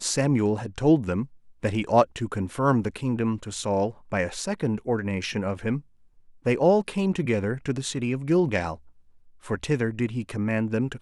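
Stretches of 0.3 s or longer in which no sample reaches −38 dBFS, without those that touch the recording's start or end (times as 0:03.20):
0:01.26–0:01.63
0:05.80–0:06.46
0:08.76–0:09.45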